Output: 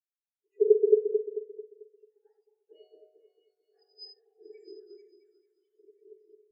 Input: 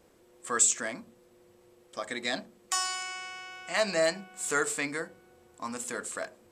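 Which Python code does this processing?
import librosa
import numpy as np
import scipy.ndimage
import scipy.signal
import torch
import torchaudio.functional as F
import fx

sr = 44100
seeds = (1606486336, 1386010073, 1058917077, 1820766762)

p1 = fx.octave_mirror(x, sr, pivot_hz=1800.0)
p2 = fx.peak_eq(p1, sr, hz=1200.0, db=-6.0, octaves=1.4)
p3 = fx.spec_gate(p2, sr, threshold_db=-15, keep='strong')
p4 = p3 + fx.echo_opening(p3, sr, ms=221, hz=750, octaves=2, feedback_pct=70, wet_db=0, dry=0)
p5 = fx.rev_gated(p4, sr, seeds[0], gate_ms=120, shape='rising', drr_db=2.0)
p6 = fx.spectral_expand(p5, sr, expansion=2.5)
y = p6 * 10.0 ** (-3.5 / 20.0)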